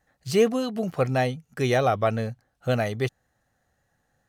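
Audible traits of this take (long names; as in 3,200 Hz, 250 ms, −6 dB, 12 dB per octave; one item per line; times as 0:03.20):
background noise floor −73 dBFS
spectral slope −5.5 dB per octave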